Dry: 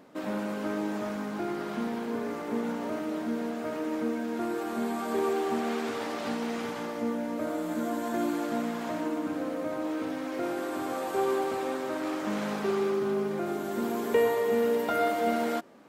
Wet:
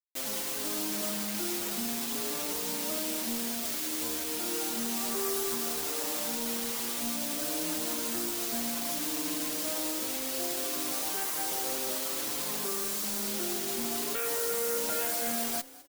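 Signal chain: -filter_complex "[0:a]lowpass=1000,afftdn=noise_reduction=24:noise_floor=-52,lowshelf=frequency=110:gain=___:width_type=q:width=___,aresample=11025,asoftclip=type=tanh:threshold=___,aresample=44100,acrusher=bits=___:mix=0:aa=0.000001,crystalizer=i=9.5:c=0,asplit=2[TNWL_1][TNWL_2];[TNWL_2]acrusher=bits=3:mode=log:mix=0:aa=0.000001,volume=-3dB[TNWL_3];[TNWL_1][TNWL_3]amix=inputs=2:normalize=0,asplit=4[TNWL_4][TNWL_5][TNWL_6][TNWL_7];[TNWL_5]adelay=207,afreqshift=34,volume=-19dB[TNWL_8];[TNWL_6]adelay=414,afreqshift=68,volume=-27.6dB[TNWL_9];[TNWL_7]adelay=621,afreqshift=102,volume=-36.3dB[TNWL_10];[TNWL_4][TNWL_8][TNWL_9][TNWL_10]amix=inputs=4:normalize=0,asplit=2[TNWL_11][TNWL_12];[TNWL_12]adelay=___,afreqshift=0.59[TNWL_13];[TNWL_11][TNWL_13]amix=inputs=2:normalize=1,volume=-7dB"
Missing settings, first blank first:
-8, 1.5, -30.5dB, 6, 5.7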